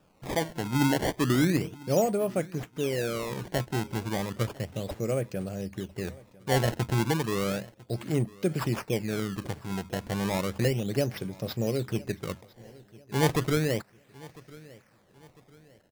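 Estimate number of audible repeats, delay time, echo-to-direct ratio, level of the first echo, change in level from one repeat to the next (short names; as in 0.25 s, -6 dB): 2, 1.001 s, -21.5 dB, -22.0 dB, -8.0 dB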